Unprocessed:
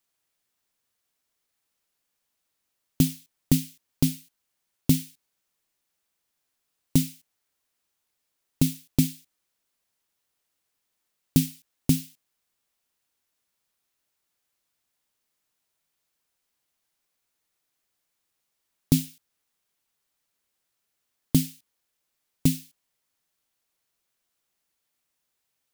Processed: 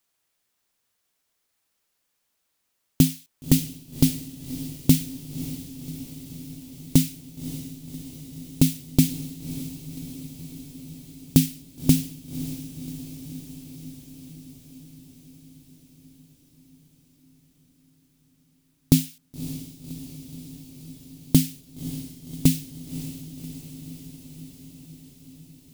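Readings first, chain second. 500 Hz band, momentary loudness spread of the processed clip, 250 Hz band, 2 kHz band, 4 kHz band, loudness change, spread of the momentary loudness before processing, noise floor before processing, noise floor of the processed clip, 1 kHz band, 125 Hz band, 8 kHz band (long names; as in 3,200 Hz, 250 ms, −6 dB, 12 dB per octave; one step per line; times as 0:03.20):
+4.0 dB, 21 LU, +4.0 dB, +4.0 dB, +4.0 dB, 0.0 dB, 11 LU, −80 dBFS, −75 dBFS, can't be measured, +4.0 dB, +4.0 dB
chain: feedback delay with all-pass diffusion 568 ms, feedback 71%, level −12.5 dB
level +3.5 dB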